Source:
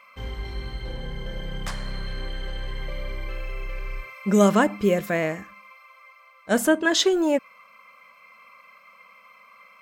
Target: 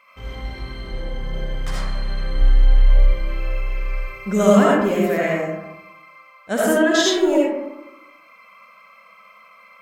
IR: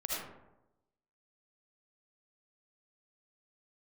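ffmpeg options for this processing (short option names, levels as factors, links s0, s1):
-filter_complex "[0:a]asplit=3[s0][s1][s2];[s0]afade=t=out:st=2.34:d=0.02[s3];[s1]asubboost=boost=6.5:cutoff=62,afade=t=in:st=2.34:d=0.02,afade=t=out:st=3.06:d=0.02[s4];[s2]afade=t=in:st=3.06:d=0.02[s5];[s3][s4][s5]amix=inputs=3:normalize=0[s6];[1:a]atrim=start_sample=2205[s7];[s6][s7]afir=irnorm=-1:irlink=0"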